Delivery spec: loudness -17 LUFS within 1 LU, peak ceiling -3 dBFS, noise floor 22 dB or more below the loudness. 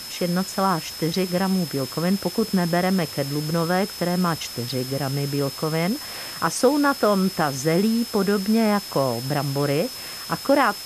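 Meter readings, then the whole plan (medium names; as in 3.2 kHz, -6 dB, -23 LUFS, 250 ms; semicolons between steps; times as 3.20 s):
steady tone 5.2 kHz; tone level -35 dBFS; noise floor -35 dBFS; noise floor target -45 dBFS; loudness -23.0 LUFS; peak level -6.0 dBFS; loudness target -17.0 LUFS
-> band-stop 5.2 kHz, Q 30; noise reduction 10 dB, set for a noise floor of -35 dBFS; trim +6 dB; peak limiter -3 dBFS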